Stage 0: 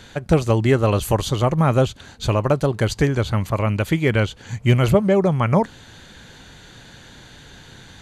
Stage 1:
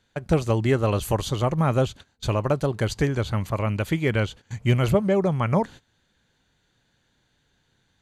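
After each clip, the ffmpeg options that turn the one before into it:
ffmpeg -i in.wav -af "agate=range=-20dB:threshold=-34dB:ratio=16:detection=peak,volume=-4.5dB" out.wav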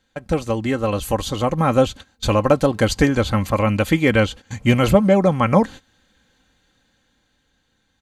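ffmpeg -i in.wav -af "aecho=1:1:3.8:0.52,dynaudnorm=framelen=240:gausssize=13:maxgain=11.5dB" out.wav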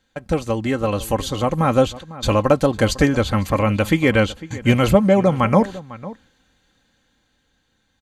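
ffmpeg -i in.wav -filter_complex "[0:a]asplit=2[link_01][link_02];[link_02]adelay=501.5,volume=-17dB,highshelf=frequency=4000:gain=-11.3[link_03];[link_01][link_03]amix=inputs=2:normalize=0" out.wav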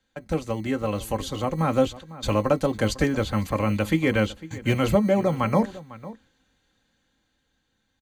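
ffmpeg -i in.wav -filter_complex "[0:a]acrossover=split=150|460|5800[link_01][link_02][link_03][link_04];[link_01]acrusher=samples=21:mix=1:aa=0.000001[link_05];[link_02]asplit=2[link_06][link_07];[link_07]adelay=19,volume=-4dB[link_08];[link_06][link_08]amix=inputs=2:normalize=0[link_09];[link_05][link_09][link_03][link_04]amix=inputs=4:normalize=0,volume=-6.5dB" out.wav

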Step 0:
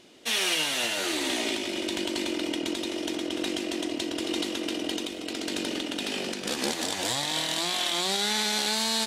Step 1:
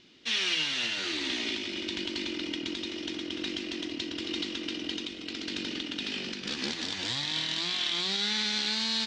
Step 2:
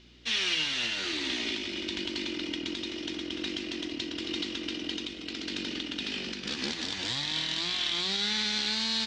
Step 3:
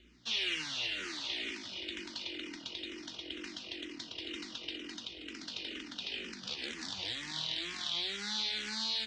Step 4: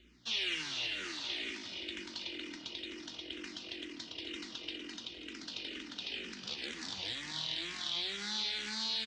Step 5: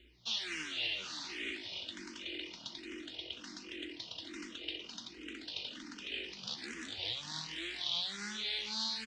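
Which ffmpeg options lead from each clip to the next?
ffmpeg -i in.wav -af "lowpass=frequency=5300:width=0.5412,lowpass=frequency=5300:width=1.3066,equalizer=frequency=640:width=0.89:gain=-14.5" out.wav
ffmpeg -i in.wav -af "aeval=exprs='val(0)+0.00126*(sin(2*PI*60*n/s)+sin(2*PI*2*60*n/s)/2+sin(2*PI*3*60*n/s)/3+sin(2*PI*4*60*n/s)/4+sin(2*PI*5*60*n/s)/5)':channel_layout=same" out.wav
ffmpeg -i in.wav -filter_complex "[0:a]acrossover=split=440[link_01][link_02];[link_01]alimiter=level_in=16dB:limit=-24dB:level=0:latency=1:release=35,volume=-16dB[link_03];[link_03][link_02]amix=inputs=2:normalize=0,asplit=2[link_04][link_05];[link_05]afreqshift=-2.1[link_06];[link_04][link_06]amix=inputs=2:normalize=1,volume=-3.5dB" out.wav
ffmpeg -i in.wav -filter_complex "[0:a]asplit=2[link_01][link_02];[link_02]adelay=250.7,volume=-13dB,highshelf=frequency=4000:gain=-5.64[link_03];[link_01][link_03]amix=inputs=2:normalize=0,volume=-1dB" out.wav
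ffmpeg -i in.wav -filter_complex "[0:a]asplit=2[link_01][link_02];[link_02]afreqshift=1.3[link_03];[link_01][link_03]amix=inputs=2:normalize=1,volume=2dB" out.wav

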